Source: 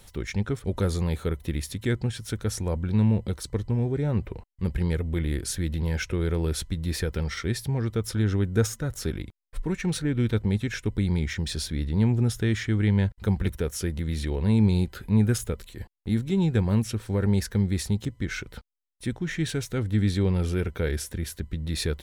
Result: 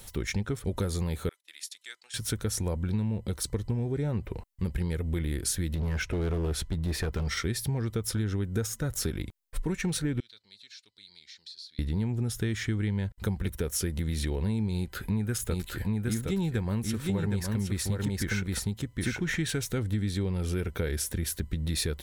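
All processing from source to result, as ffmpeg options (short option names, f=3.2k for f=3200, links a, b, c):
-filter_complex "[0:a]asettb=1/sr,asplit=3[a][b][c];[a]atrim=end=1.294[d];[b]atrim=start=1.29:end=2.14,asetpts=PTS-STARTPTS,afade=t=in:d=0.004:c=qsin,afade=t=out:st=0.846:d=0.004:c=qsin,agate=range=-22dB:threshold=-40dB:ratio=16:release=100:detection=peak,highpass=750,lowpass=5.6k,aderivative[e];[c]atrim=start=2.136[f];[d][e]acrossfade=d=0.004:c1=hsin:c2=qsin[g];[g][f]acrossfade=d=0.004:c1=qsin:c2=hsin,asettb=1/sr,asplit=3[h][i][j];[h]atrim=end=5.754[k];[i]atrim=start=5.75:end=7.27,asetpts=PTS-STARTPTS,afade=t=in:d=0.004:c=qsin,afade=t=out:st=1.516:d=0.004:c=qsin,highshelf=f=4.5k:g=-11,bandreject=f=510:w=9.1,asoftclip=type=hard:threshold=-25.5dB[l];[j]atrim=start=7.266[m];[k][l]acrossfade=d=0.004:c1=hsin:c2=qsin[n];[n][m]acrossfade=d=0.004:c1=qsin:c2=hsin,asettb=1/sr,asplit=3[o][p][q];[o]atrim=end=10.204[r];[p]atrim=start=10.2:end=11.79,asetpts=PTS-STARTPTS,afade=t=in:d=0.004:c=qsin,afade=t=out:st=1.586:d=0.004:c=qsin,bandpass=f=4.3k:t=q:w=7.4,acompressor=threshold=-48dB:ratio=3:attack=3.2:release=140:knee=1:detection=peak[s];[q]atrim=start=11.786[t];[r][s]acrossfade=d=0.004:c1=hsin:c2=qsin[u];[u][t]acrossfade=d=0.004:c1=qsin:c2=hsin,asettb=1/sr,asplit=3[v][w][x];[v]atrim=end=14.744[y];[w]atrim=start=14.74:end=19.59,asetpts=PTS-STARTPTS,afade=t=in:d=0.004:c=qsin,afade=t=out:st=4.846:d=0.004:c=qsin,equalizer=f=1.6k:t=o:w=1.6:g=3.5,aecho=1:1:765:0.631,atrim=end_sample=213885[z];[x]atrim=start=19.586[aa];[y][z]acrossfade=d=0.004:c1=hsin:c2=qsin[ab];[ab][aa]acrossfade=d=0.004:c1=qsin:c2=hsin,highshelf=f=7.1k:g=8,acompressor=threshold=-28dB:ratio=6,volume=2dB"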